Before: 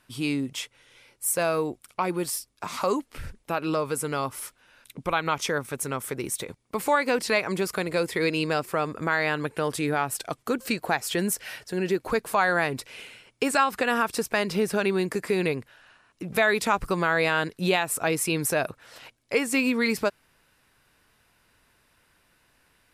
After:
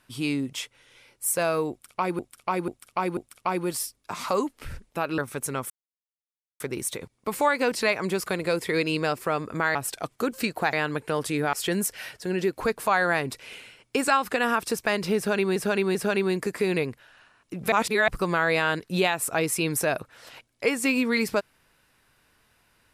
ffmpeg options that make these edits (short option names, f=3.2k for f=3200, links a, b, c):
-filter_complex "[0:a]asplit=13[a][b][c][d][e][f][g][h][i][j][k][l][m];[a]atrim=end=2.192[n];[b]atrim=start=1.698:end=2.192[o];[c]atrim=start=1.698:end=2.192[p];[d]atrim=start=1.698:end=3.712[q];[e]atrim=start=5.548:end=6.07,asetpts=PTS-STARTPTS,afade=t=out:st=0.518:d=0.004:c=hsin,apad=pad_dur=0.9[r];[f]atrim=start=6.07:end=9.222,asetpts=PTS-STARTPTS,afade=t=in:d=0.004:c=hsin[s];[g]atrim=start=10.018:end=11.002[t];[h]atrim=start=9.218:end=10.022[u];[i]atrim=start=10.998:end=15.032[v];[j]atrim=start=14.638:end=15.032[w];[k]atrim=start=14.638:end=16.412[x];[l]atrim=start=16.408:end=16.772,asetpts=PTS-STARTPTS,areverse[y];[m]atrim=start=16.768[z];[n][o]acrossfade=d=0.004:c1=hsin:c2=hsin[aa];[aa][p]acrossfade=d=0.004:c1=hsin:c2=hsin[ab];[ab][q]acrossfade=d=0.004:c1=hsin:c2=hsin[ac];[r][s]concat=n=2:v=0:a=1[ad];[ac][ad]acrossfade=d=0.004:c1=hsin:c2=hsin[ae];[ae][t]acrossfade=d=0.004:c1=hsin:c2=hsin[af];[af][u]acrossfade=d=0.004:c1=hsin:c2=hsin[ag];[ag][v]acrossfade=d=0.004:c1=hsin:c2=hsin[ah];[ah][w]acrossfade=d=0.004:c1=hsin:c2=hsin[ai];[ai][x]acrossfade=d=0.004:c1=hsin:c2=hsin[aj];[aj][y]acrossfade=d=0.004:c1=hsin:c2=hsin[ak];[ak][z]acrossfade=d=0.004:c1=hsin:c2=hsin"